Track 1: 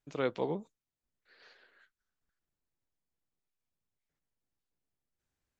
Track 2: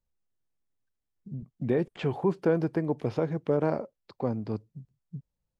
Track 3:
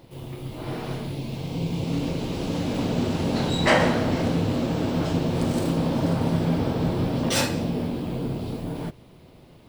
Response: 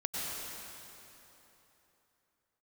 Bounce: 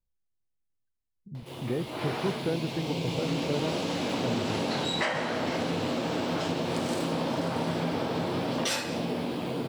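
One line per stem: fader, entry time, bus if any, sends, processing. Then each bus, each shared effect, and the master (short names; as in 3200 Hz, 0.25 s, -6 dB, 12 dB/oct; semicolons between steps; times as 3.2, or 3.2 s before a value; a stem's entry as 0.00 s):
off
-7.0 dB, 0.00 s, no send, dry
+3.0 dB, 1.35 s, no send, weighting filter A; compressor 6:1, threshold -30 dBFS, peak gain reduction 14.5 dB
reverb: off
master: low shelf 160 Hz +7.5 dB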